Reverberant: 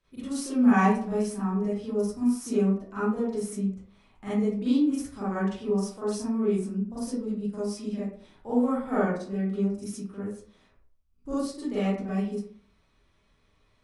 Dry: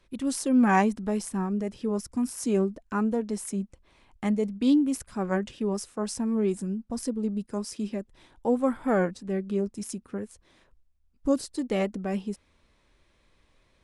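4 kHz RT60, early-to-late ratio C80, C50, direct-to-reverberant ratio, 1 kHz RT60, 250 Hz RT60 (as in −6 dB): 0.30 s, 5.0 dB, −2.0 dB, −11.5 dB, 0.50 s, 0.55 s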